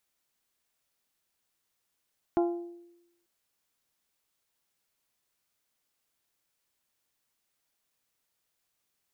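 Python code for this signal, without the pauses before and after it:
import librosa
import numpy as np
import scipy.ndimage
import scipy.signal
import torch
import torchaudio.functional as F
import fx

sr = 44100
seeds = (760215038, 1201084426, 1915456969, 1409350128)

y = fx.strike_glass(sr, length_s=0.89, level_db=-21.0, body='bell', hz=345.0, decay_s=0.92, tilt_db=6.0, modes=5)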